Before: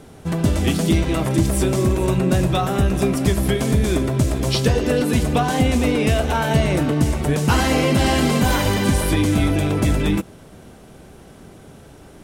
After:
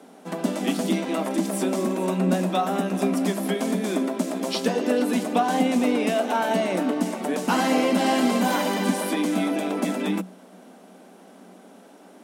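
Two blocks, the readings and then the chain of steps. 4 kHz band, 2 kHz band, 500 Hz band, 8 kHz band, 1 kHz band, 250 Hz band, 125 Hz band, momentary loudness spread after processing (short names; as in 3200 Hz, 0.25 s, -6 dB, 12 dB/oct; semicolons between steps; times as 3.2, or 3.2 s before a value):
-5.5 dB, -5.0 dB, -3.0 dB, -6.0 dB, -1.0 dB, -3.0 dB, -15.5 dB, 5 LU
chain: rippled Chebyshev high-pass 180 Hz, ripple 6 dB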